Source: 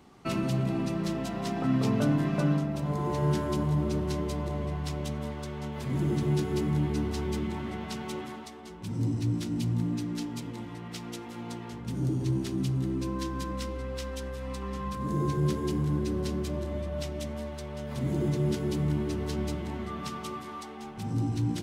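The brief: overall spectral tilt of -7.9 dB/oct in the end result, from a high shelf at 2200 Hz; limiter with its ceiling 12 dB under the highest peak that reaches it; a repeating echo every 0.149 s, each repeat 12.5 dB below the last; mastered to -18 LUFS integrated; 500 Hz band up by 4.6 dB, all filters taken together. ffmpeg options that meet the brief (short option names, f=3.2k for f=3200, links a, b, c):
-af "equalizer=f=500:t=o:g=7,highshelf=f=2.2k:g=-7.5,alimiter=level_in=1dB:limit=-24dB:level=0:latency=1,volume=-1dB,aecho=1:1:149|298|447:0.237|0.0569|0.0137,volume=15.5dB"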